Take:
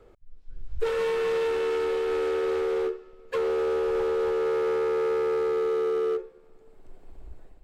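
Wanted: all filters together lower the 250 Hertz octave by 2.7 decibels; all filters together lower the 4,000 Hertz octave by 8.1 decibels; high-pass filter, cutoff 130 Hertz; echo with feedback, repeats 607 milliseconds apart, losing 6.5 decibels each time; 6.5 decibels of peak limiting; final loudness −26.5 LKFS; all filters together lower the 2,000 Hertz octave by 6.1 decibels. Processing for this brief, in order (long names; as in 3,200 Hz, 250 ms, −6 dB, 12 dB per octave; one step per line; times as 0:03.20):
high-pass filter 130 Hz
parametric band 250 Hz −5.5 dB
parametric band 2,000 Hz −6 dB
parametric band 4,000 Hz −8.5 dB
brickwall limiter −26 dBFS
repeating echo 607 ms, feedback 47%, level −6.5 dB
level +5 dB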